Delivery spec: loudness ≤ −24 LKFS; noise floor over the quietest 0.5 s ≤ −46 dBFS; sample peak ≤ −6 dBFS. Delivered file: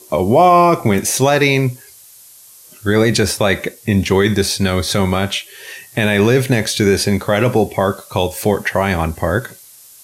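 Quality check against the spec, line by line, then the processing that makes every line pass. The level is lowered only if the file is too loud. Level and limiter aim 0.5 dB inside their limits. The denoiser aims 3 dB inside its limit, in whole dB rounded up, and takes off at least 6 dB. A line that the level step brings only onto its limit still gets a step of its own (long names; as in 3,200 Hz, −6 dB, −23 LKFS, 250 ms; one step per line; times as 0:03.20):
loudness −15.5 LKFS: out of spec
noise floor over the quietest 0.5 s −43 dBFS: out of spec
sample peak −2.0 dBFS: out of spec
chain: level −9 dB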